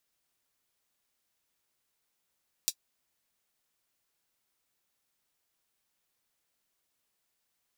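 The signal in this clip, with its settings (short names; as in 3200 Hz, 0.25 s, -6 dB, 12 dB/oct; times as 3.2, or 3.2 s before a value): closed hi-hat, high-pass 4500 Hz, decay 0.07 s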